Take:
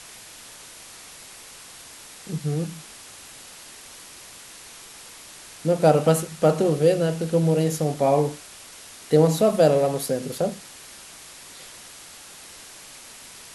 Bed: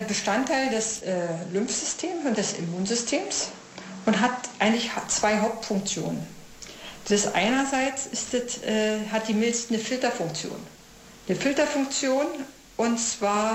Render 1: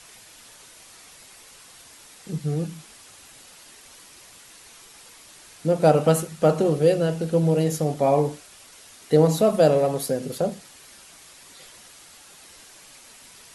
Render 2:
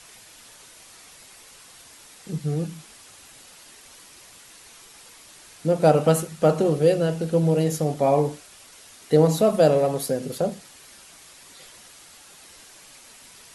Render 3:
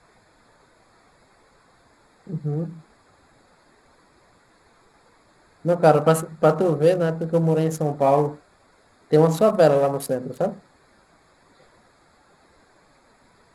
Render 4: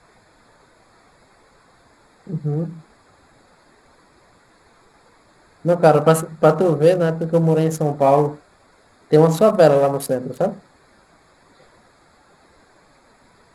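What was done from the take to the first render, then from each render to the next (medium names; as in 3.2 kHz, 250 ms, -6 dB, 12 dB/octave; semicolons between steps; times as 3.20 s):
noise reduction 6 dB, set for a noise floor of -44 dBFS
no audible change
local Wiener filter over 15 samples; dynamic bell 1.2 kHz, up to +7 dB, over -37 dBFS, Q 1.1
trim +3.5 dB; peak limiter -1 dBFS, peak gain reduction 2 dB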